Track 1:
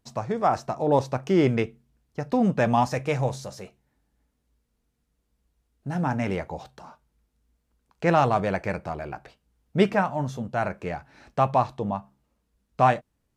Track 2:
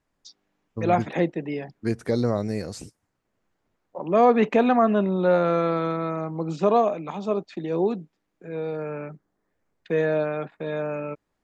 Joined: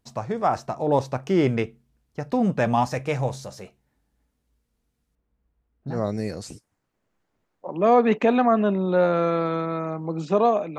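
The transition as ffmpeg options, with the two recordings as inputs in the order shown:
-filter_complex "[0:a]asettb=1/sr,asplit=3[a][b][c];[a]atrim=end=5.154[d];[b]atrim=start=5.15:end=6.03,asetpts=PTS-STARTPTS,afade=t=in:d=0.004:c=qsin,afade=t=out:st=0.876:d=0.004:c=qsin,lowpass=1.9k[e];[c]atrim=start=6.026[f];[d][e]acrossfade=d=0.004:c1=hsin:c2=qsin[g];[g][f]acrossfade=d=0.004:c1=qsin:c2=hsin,apad=whole_dur=10.78,atrim=end=10.78,atrim=end=6.03,asetpts=PTS-STARTPTS[h];[1:a]atrim=start=2.18:end=7.09,asetpts=PTS-STARTPTS[i];[h][i]acrossfade=d=0.16:c1=tri:c2=tri"

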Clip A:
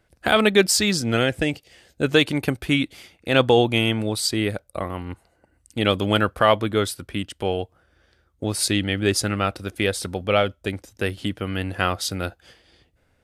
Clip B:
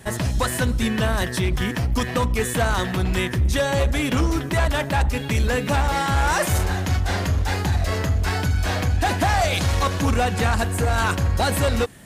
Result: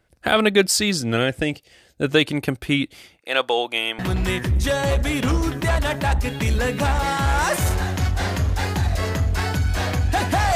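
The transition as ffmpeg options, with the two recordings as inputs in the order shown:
-filter_complex "[0:a]asettb=1/sr,asplit=3[a][b][c];[a]atrim=end=3.204[d];[b]atrim=start=3.2:end=3.99,asetpts=PTS-STARTPTS,afade=t=in:d=0.004:c=qsin,afade=t=out:st=0.786:d=0.004:c=qsin,highpass=610[e];[c]atrim=start=3.986[f];[d][e]acrossfade=d=0.004:c1=hsin:c2=qsin[g];[g][f]acrossfade=d=0.004:c1=qsin:c2=hsin,apad=whole_dur=10.55,atrim=end=10.55,atrim=end=3.992[h];[1:a]atrim=start=2.878:end=9.44[i];[h][i]acrossfade=d=0.004:c1=hsin:c2=hsin"

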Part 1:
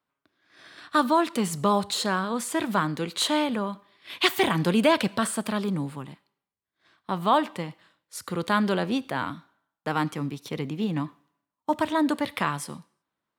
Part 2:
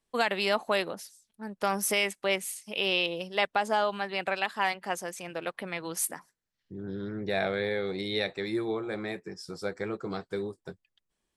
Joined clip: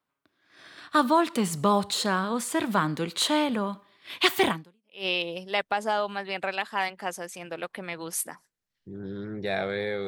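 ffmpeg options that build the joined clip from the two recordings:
-filter_complex "[0:a]apad=whole_dur=10.07,atrim=end=10.07,atrim=end=5.06,asetpts=PTS-STARTPTS[a];[1:a]atrim=start=2.34:end=7.91,asetpts=PTS-STARTPTS[b];[a][b]acrossfade=d=0.56:c1=exp:c2=exp"

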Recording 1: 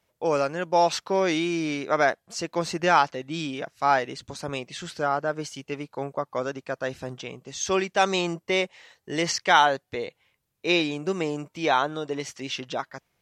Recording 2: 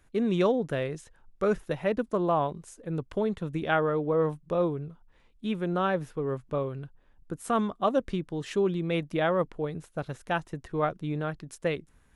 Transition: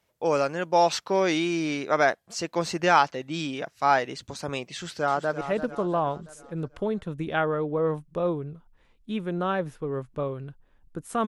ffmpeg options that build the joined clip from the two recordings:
-filter_complex "[0:a]apad=whole_dur=11.27,atrim=end=11.27,atrim=end=5.412[a];[1:a]atrim=start=1.758:end=7.62[b];[a][b]acrossfade=d=0.004:c1=hsin:c2=hsin,asplit=2[c][d];[d]afade=t=in:st=4.73:d=0.01,afade=t=out:st=5.41:d=0.01,aecho=0:1:340|680|1020|1360|1700:0.281838|0.140919|0.0704596|0.0352298|0.0176149[e];[c][e]amix=inputs=2:normalize=0"

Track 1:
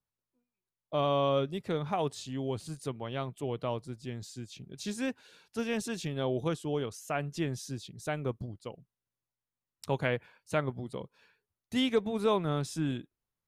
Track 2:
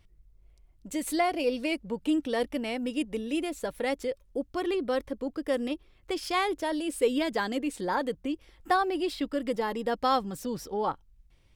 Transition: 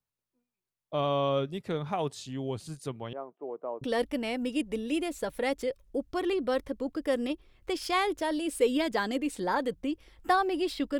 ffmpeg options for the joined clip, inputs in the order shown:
-filter_complex "[0:a]asettb=1/sr,asplit=3[a][b][c];[a]atrim=end=3.134[d];[b]atrim=start=3.13:end=3.84,asetpts=PTS-STARTPTS,afade=t=in:d=0.004:c=qsin,afade=t=out:st=0.706:d=0.004:c=qsin,acrossover=split=300|1200[e][f][g];[e]adelay=680[h];[g]adelay=760[i];[h][f][i]amix=inputs=3:normalize=0,atrim=end_sample=31311[j];[c]atrim=start=3.836[k];[d][j]acrossfade=d=0.004:c1=hsin:c2=qsin[l];[l][k]acrossfade=d=0.004:c1=qsin:c2=hsin,apad=whole_dur=10.99,atrim=end=10.99,atrim=end=3.842[m];[1:a]atrim=start=2.248:end=9.4[n];[m][n]acrossfade=d=0.004:c1=hsin:c2=hsin"

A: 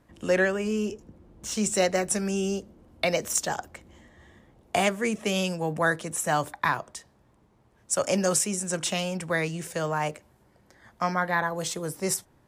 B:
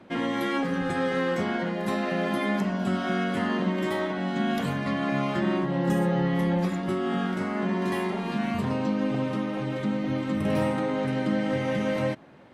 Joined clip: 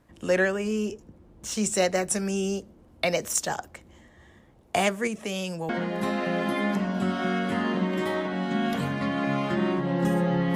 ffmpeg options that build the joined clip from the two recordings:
-filter_complex "[0:a]asettb=1/sr,asplit=3[a][b][c];[a]atrim=end=5.074[d];[b]atrim=start=5.07:end=5.69,asetpts=PTS-STARTPTS,afade=t=in:d=0.004:c=qsin,afade=t=out:st=0.616:d=0.004:c=qsin,acompressor=threshold=-30dB:ratio=2:attack=3.2:release=140:knee=1:detection=peak[e];[c]atrim=start=5.686[f];[d][e]acrossfade=d=0.004:c1=hsin:c2=qsin[g];[g][f]acrossfade=d=0.004:c1=qsin:c2=hsin,apad=whole_dur=10.55,atrim=end=10.55,atrim=end=5.692[h];[1:a]atrim=start=1.538:end=6.4[i];[h][i]acrossfade=d=0.004:c1=hsin:c2=hsin"

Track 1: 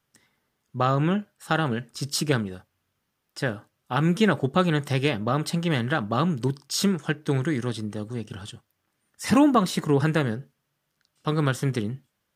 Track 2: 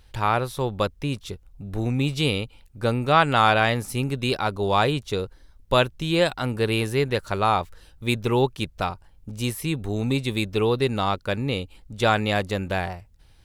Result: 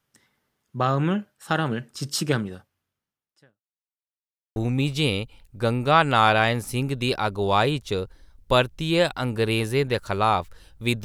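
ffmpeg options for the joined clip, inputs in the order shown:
-filter_complex "[0:a]apad=whole_dur=11.04,atrim=end=11.04,asplit=2[a][b];[a]atrim=end=3.63,asetpts=PTS-STARTPTS,afade=t=out:st=2.53:d=1.1:c=qua[c];[b]atrim=start=3.63:end=4.56,asetpts=PTS-STARTPTS,volume=0[d];[1:a]atrim=start=1.77:end=8.25,asetpts=PTS-STARTPTS,afade=t=in:d=0.004:c=hsin[e];[c][d][e]concat=n=3:v=0:a=1"

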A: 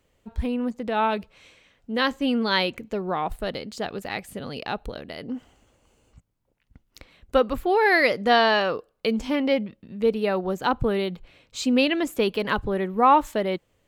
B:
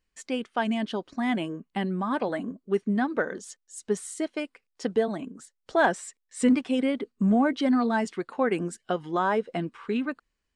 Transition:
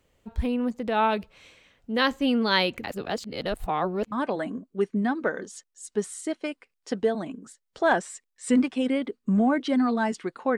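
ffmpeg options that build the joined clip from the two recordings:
-filter_complex "[0:a]apad=whole_dur=10.57,atrim=end=10.57,asplit=2[a][b];[a]atrim=end=2.842[c];[b]atrim=start=2.838:end=4.122,asetpts=PTS-STARTPTS,areverse[d];[1:a]atrim=start=2.048:end=8.5[e];[c][d]acrossfade=d=0.004:c1=hsin:c2=hsin[f];[f][e]acrossfade=d=0.004:c1=hsin:c2=hsin"

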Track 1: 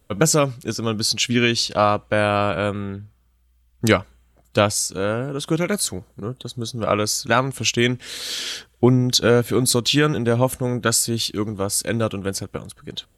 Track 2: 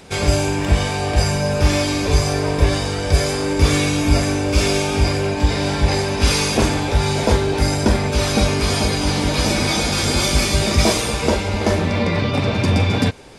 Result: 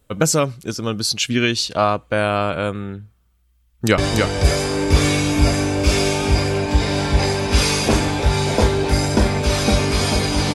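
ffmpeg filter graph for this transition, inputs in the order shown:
-filter_complex "[0:a]apad=whole_dur=10.54,atrim=end=10.54,atrim=end=3.982[a];[1:a]atrim=start=2.668:end=9.23[b];[a][b]acrossfade=d=0.004:c1=hsin:c2=hsin,asplit=2[c][d];[d]afade=t=in:st=3.6:d=0.01,afade=t=out:st=3.98:d=0.01,aecho=0:1:290|580|870|1160:0.707946|0.176986|0.0442466|0.0110617[e];[c][e]amix=inputs=2:normalize=0"

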